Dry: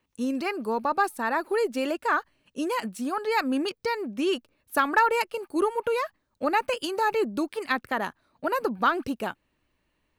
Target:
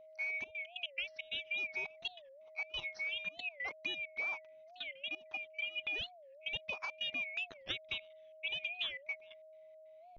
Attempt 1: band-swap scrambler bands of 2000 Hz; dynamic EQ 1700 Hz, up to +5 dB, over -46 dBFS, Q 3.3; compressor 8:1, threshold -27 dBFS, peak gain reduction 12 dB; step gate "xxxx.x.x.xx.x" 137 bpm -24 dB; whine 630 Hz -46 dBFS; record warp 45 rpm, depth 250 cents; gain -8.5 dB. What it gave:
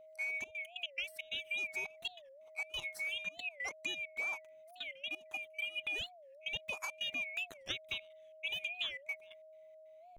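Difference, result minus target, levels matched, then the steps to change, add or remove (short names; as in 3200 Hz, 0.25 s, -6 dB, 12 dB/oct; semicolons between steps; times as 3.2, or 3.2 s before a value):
8000 Hz band +12.5 dB
add after dynamic EQ: steep low-pass 5800 Hz 96 dB/oct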